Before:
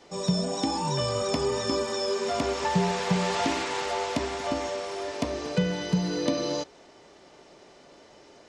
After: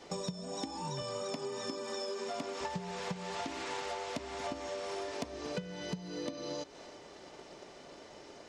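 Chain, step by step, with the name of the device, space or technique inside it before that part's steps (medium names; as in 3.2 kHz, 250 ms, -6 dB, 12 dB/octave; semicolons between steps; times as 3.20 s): 1.02–2.61 s: high-pass 140 Hz 24 dB/octave; drum-bus smash (transient shaper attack +7 dB, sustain +2 dB; compression 12:1, threshold -35 dBFS, peak gain reduction 23 dB; saturation -24 dBFS, distortion -25 dB); thinning echo 334 ms, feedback 58%, level -17 dB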